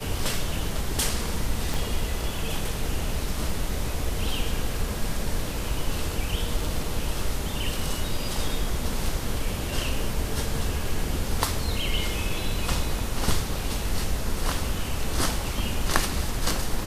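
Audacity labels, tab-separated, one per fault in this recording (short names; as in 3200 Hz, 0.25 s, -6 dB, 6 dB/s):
1.740000	1.740000	pop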